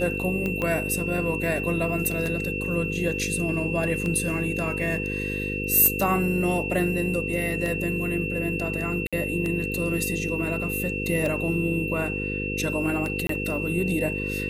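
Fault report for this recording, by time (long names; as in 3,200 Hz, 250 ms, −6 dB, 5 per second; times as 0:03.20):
mains buzz 50 Hz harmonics 10 −31 dBFS
scratch tick 33 1/3 rpm −16 dBFS
whistle 2,700 Hz −30 dBFS
0:00.62: click −15 dBFS
0:09.07–0:09.13: drop-out 56 ms
0:13.27–0:13.29: drop-out 23 ms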